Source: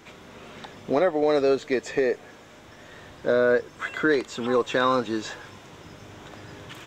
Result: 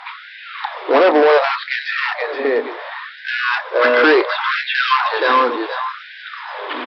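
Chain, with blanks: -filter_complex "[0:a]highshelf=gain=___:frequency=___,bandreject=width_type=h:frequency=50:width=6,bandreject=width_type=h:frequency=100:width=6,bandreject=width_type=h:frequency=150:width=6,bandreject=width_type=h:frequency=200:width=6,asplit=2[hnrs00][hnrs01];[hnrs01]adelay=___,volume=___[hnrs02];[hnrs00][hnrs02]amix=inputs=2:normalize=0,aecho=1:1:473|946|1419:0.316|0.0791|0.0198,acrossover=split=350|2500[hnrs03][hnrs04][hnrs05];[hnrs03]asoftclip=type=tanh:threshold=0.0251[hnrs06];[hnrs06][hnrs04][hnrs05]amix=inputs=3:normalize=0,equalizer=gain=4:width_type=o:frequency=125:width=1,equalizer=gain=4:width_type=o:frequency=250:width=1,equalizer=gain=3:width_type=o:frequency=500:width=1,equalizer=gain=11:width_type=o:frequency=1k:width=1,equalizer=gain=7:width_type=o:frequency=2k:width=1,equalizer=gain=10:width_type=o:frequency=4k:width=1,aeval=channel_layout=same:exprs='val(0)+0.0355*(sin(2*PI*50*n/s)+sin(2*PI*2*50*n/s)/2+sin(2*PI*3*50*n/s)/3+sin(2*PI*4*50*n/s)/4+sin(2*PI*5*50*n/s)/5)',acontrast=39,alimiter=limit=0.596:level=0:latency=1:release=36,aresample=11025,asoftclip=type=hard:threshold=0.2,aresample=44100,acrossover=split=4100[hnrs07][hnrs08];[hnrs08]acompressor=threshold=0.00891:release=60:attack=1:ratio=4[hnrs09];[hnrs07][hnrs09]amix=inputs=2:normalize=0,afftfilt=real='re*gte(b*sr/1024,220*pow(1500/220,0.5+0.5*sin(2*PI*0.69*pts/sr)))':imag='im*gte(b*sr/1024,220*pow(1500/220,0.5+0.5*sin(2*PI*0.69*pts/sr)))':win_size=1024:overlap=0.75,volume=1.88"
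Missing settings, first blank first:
-12, 2.2k, 29, 0.224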